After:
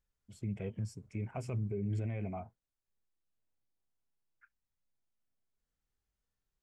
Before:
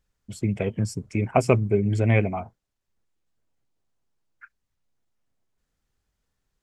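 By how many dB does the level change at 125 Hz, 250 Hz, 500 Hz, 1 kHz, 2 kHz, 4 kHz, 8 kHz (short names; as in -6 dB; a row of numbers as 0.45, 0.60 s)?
-13.0 dB, -14.5 dB, -19.0 dB, -19.5 dB, -22.5 dB, under -15 dB, under -15 dB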